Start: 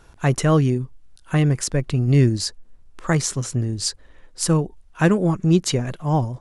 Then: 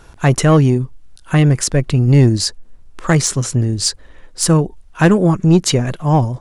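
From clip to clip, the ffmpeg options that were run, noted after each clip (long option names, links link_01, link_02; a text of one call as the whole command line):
ffmpeg -i in.wav -af "acontrast=90" out.wav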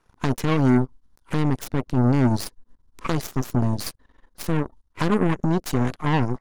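ffmpeg -i in.wav -af "alimiter=limit=-13.5dB:level=0:latency=1:release=133,equalizer=frequency=250:width_type=o:width=0.33:gain=10,equalizer=frequency=630:width_type=o:width=0.33:gain=-6,equalizer=frequency=1000:width_type=o:width=0.33:gain=9,equalizer=frequency=2500:width_type=o:width=0.33:gain=-11,equalizer=frequency=8000:width_type=o:width=0.33:gain=-8,aeval=exprs='0.398*(cos(1*acos(clip(val(0)/0.398,-1,1)))-cos(1*PI/2))+0.0631*(cos(3*acos(clip(val(0)/0.398,-1,1)))-cos(3*PI/2))+0.0316*(cos(7*acos(clip(val(0)/0.398,-1,1)))-cos(7*PI/2))+0.0316*(cos(8*acos(clip(val(0)/0.398,-1,1)))-cos(8*PI/2))':channel_layout=same" out.wav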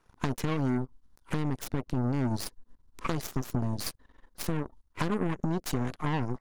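ffmpeg -i in.wav -af "acompressor=threshold=-23dB:ratio=6,volume=-2dB" out.wav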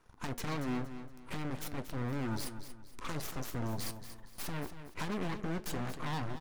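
ffmpeg -i in.wav -af "asoftclip=type=hard:threshold=-33dB,flanger=delay=9.4:depth=2.2:regen=-75:speed=0.54:shape=triangular,aecho=1:1:233|466|699|932:0.282|0.0958|0.0326|0.0111,volume=5.5dB" out.wav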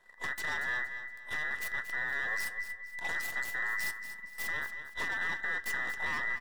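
ffmpeg -i in.wav -af "afftfilt=real='real(if(between(b,1,1012),(2*floor((b-1)/92)+1)*92-b,b),0)':imag='imag(if(between(b,1,1012),(2*floor((b-1)/92)+1)*92-b,b),0)*if(between(b,1,1012),-1,1)':win_size=2048:overlap=0.75" out.wav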